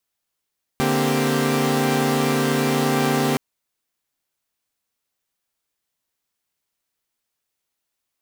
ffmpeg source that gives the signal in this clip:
-f lavfi -i "aevalsrc='0.0891*((2*mod(146.83*t,1)-1)+(2*mod(233.08*t,1)-1)+(2*mod(261.63*t,1)-1)+(2*mod(392*t,1)-1))':d=2.57:s=44100"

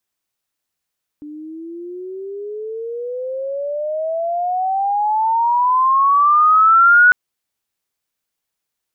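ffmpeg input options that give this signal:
-f lavfi -i "aevalsrc='pow(10,(-6+24*(t/5.9-1))/20)*sin(2*PI*294*5.9/(28*log(2)/12)*(exp(28*log(2)/12*t/5.9)-1))':d=5.9:s=44100"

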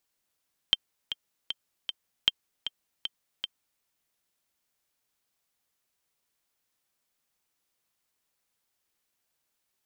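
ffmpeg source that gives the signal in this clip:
-f lavfi -i "aevalsrc='pow(10,(-7-11*gte(mod(t,4*60/155),60/155))/20)*sin(2*PI*3150*mod(t,60/155))*exp(-6.91*mod(t,60/155)/0.03)':d=3.09:s=44100"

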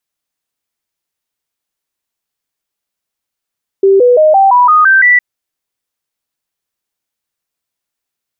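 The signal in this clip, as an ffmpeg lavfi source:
-f lavfi -i "aevalsrc='0.668*clip(min(mod(t,0.17),0.17-mod(t,0.17))/0.005,0,1)*sin(2*PI*390*pow(2,floor(t/0.17)/3)*mod(t,0.17))':d=1.36:s=44100"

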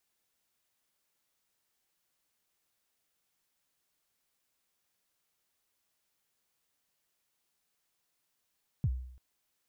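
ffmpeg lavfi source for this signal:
-f lavfi -i "aevalsrc='0.0668*pow(10,-3*t/0.68)*sin(2*PI*(160*0.053/log(63/160)*(exp(log(63/160)*min(t,0.053)/0.053)-1)+63*max(t-0.053,0)))':d=0.34:s=44100"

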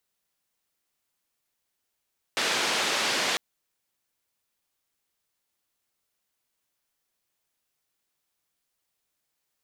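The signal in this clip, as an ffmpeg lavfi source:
-f lavfi -i "anoisesrc=c=white:d=1:r=44100:seed=1,highpass=f=250,lowpass=f=4400,volume=-14.8dB"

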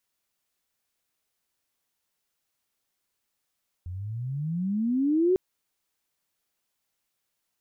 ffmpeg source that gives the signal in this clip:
-f lavfi -i "aevalsrc='pow(10,(-18+15*(t/1.5-1))/20)*sin(2*PI*85.2*1.5/(26*log(2)/12)*(exp(26*log(2)/12*t/1.5)-1))':d=1.5:s=44100"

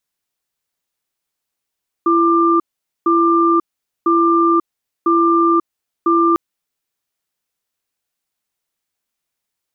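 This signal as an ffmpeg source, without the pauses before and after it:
-f lavfi -i "aevalsrc='0.224*(sin(2*PI*336*t)+sin(2*PI*1190*t))*clip(min(mod(t,1),0.54-mod(t,1))/0.005,0,1)':d=4.3:s=44100"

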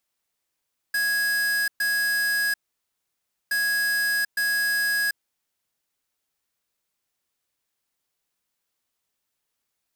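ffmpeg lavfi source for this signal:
-f lavfi -i "aevalsrc='0.0668*(2*lt(mod(1660*t,1),0.5)-1)*clip(min(mod(mod(t,2.57),0.86),0.74-mod(mod(t,2.57),0.86))/0.005,0,1)*lt(mod(t,2.57),1.72)':d=5.14:s=44100"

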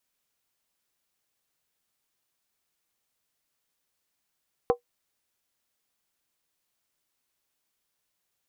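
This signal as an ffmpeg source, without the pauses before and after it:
-f lavfi -i "aevalsrc='0.2*pow(10,-3*t/0.11)*sin(2*PI*482*t)+0.1*pow(10,-3*t/0.087)*sin(2*PI*768.3*t)+0.0501*pow(10,-3*t/0.075)*sin(2*PI*1029.6*t)+0.0251*pow(10,-3*t/0.073)*sin(2*PI*1106.7*t)+0.0126*pow(10,-3*t/0.068)*sin(2*PI*1278.7*t)':d=0.63:s=44100"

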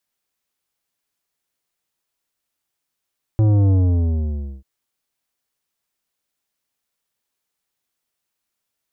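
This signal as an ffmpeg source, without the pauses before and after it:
-f lavfi -i "aevalsrc='0.224*clip((1.24-t)/0.92,0,1)*tanh(3.55*sin(2*PI*110*1.24/log(65/110)*(exp(log(65/110)*t/1.24)-1)))/tanh(3.55)':d=1.24:s=44100"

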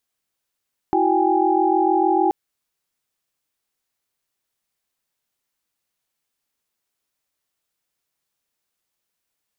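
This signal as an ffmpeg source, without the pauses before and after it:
-f lavfi -i "aevalsrc='0.0944*(sin(2*PI*329.63*t)+sin(2*PI*369.99*t)+sin(2*PI*783.99*t)+sin(2*PI*830.61*t))':d=1.38:s=44100"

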